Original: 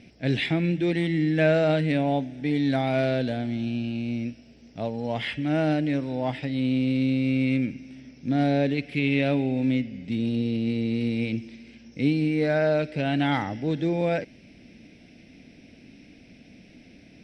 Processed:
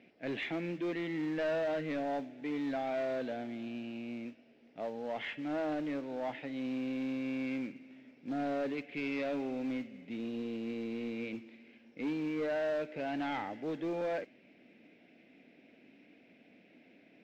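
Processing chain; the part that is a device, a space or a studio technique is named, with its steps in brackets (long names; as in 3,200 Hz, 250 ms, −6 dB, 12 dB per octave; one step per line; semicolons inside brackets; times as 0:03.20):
carbon microphone (band-pass filter 340–3,300 Hz; soft clipping −24.5 dBFS, distortion −12 dB; noise that follows the level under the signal 17 dB)
high-frequency loss of the air 190 metres
level −4.5 dB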